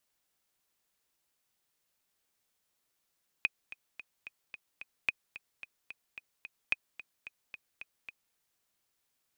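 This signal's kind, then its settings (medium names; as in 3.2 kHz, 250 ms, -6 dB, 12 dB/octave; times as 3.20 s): metronome 220 bpm, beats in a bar 6, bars 3, 2.5 kHz, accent 16.5 dB -14 dBFS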